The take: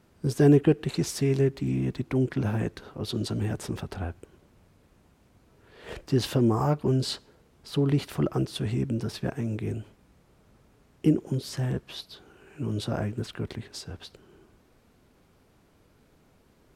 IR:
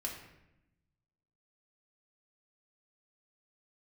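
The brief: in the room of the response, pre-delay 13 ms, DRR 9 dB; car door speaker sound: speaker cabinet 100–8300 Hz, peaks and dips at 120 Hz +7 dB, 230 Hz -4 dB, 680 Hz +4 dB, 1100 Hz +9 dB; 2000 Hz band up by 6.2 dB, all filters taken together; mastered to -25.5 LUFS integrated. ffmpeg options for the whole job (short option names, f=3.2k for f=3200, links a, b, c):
-filter_complex "[0:a]equalizer=f=2k:t=o:g=7,asplit=2[a][b];[1:a]atrim=start_sample=2205,adelay=13[c];[b][c]afir=irnorm=-1:irlink=0,volume=-9.5dB[d];[a][d]amix=inputs=2:normalize=0,highpass=100,equalizer=f=120:t=q:w=4:g=7,equalizer=f=230:t=q:w=4:g=-4,equalizer=f=680:t=q:w=4:g=4,equalizer=f=1.1k:t=q:w=4:g=9,lowpass=f=8.3k:w=0.5412,lowpass=f=8.3k:w=1.3066,volume=0.5dB"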